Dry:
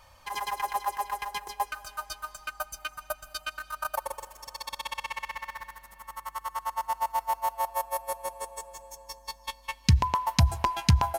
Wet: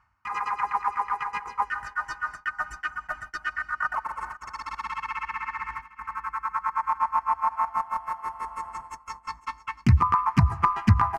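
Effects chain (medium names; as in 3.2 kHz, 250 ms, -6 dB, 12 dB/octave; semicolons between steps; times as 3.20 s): tracing distortion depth 0.097 ms; low-pass 2.7 kHz 12 dB/octave; gate -47 dBFS, range -23 dB; high-pass 97 Hz 6 dB/octave; reverse; upward compressor, threshold -31 dBFS; reverse; static phaser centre 1.3 kHz, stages 4; harmony voices +3 st -1 dB, +4 st -11 dB; on a send: delay 501 ms -17.5 dB; on the sum: trim +4 dB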